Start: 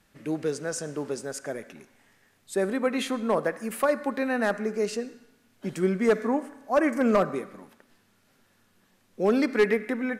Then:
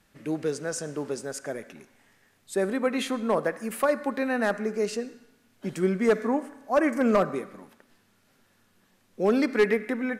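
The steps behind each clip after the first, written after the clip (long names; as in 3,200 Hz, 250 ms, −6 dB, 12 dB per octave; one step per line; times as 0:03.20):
no processing that can be heard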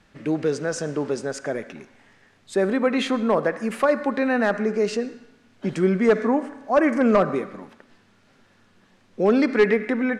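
high-frequency loss of the air 85 metres
in parallel at −2 dB: brickwall limiter −25 dBFS, peak gain reduction 10.5 dB
on the sum: level +2.5 dB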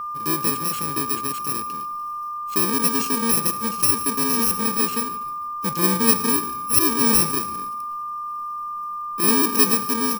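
samples in bit-reversed order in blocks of 64 samples
steady tone 1,200 Hz −27 dBFS
echo with shifted repeats 147 ms, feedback 42%, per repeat −49 Hz, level −19 dB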